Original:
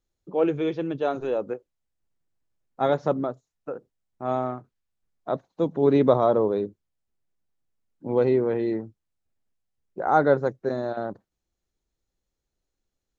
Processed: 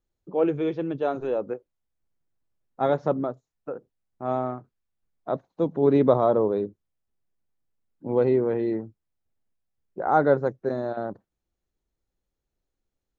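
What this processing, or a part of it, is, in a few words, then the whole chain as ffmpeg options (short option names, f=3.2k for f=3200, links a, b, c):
behind a face mask: -af "highshelf=f=2.7k:g=-7.5"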